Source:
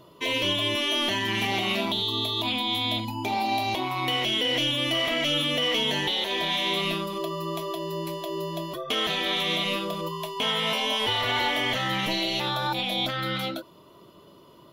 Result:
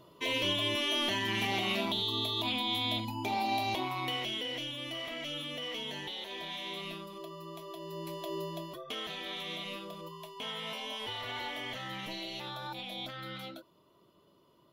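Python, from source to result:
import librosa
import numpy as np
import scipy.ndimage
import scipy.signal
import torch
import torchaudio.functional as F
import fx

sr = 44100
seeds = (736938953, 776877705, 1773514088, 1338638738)

y = fx.gain(x, sr, db=fx.line((3.81, -5.5), (4.68, -14.0), (7.61, -14.0), (8.33, -5.5), (9.05, -13.5)))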